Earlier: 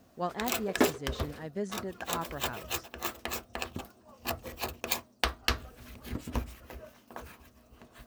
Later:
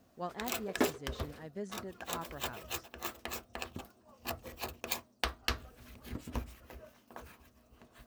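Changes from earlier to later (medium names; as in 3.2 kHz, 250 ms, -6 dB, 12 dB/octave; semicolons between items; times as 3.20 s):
speech -6.5 dB; background -5.0 dB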